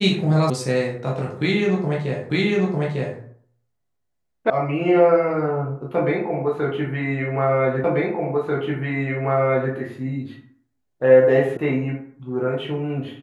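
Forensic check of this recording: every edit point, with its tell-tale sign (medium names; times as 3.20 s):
0.50 s: sound stops dead
2.30 s: repeat of the last 0.9 s
4.50 s: sound stops dead
7.84 s: repeat of the last 1.89 s
11.57 s: sound stops dead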